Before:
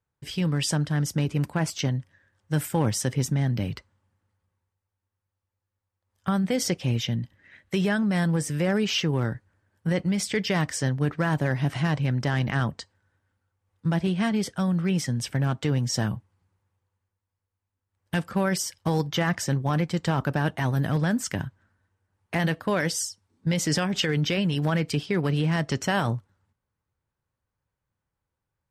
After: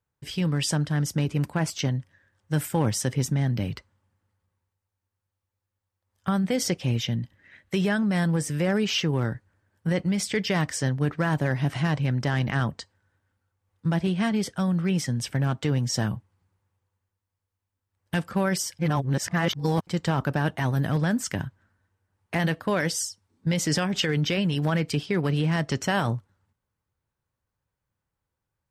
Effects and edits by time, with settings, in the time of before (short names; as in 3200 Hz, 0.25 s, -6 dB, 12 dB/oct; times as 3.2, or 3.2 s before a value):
18.79–19.87 reverse